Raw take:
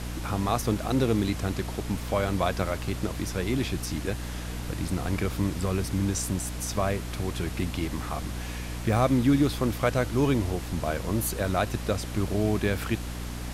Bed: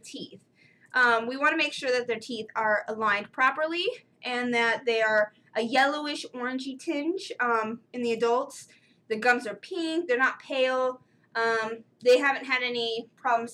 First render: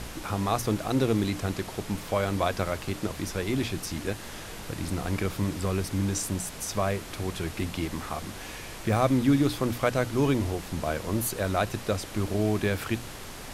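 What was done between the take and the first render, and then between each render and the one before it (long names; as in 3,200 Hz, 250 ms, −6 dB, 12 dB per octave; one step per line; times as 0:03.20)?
mains-hum notches 60/120/180/240/300 Hz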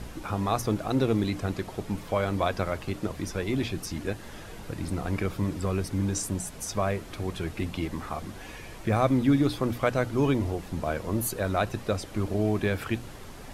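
broadband denoise 8 dB, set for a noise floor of −41 dBFS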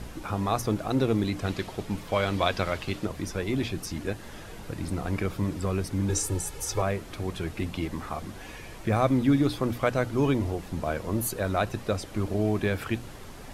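0:01.37–0:03.05: dynamic equaliser 3,400 Hz, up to +8 dB, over −49 dBFS, Q 0.76
0:06.09–0:06.82: comb filter 2.3 ms, depth 99%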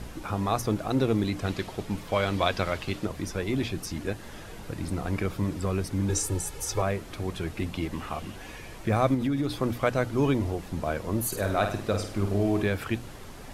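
0:07.93–0:08.36: parametric band 2,800 Hz +11 dB 0.3 octaves
0:09.14–0:09.56: downward compressor, threshold −23 dBFS
0:11.27–0:12.63: flutter between parallel walls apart 8.6 metres, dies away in 0.47 s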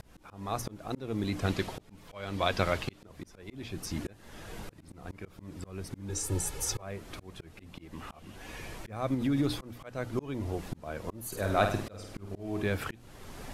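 volume swells 509 ms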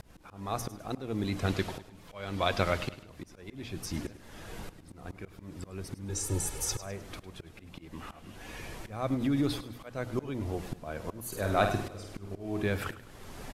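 repeating echo 103 ms, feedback 40%, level −15 dB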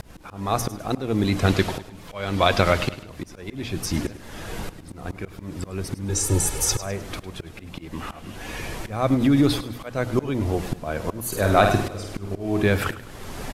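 level +10.5 dB
brickwall limiter −3 dBFS, peak gain reduction 3 dB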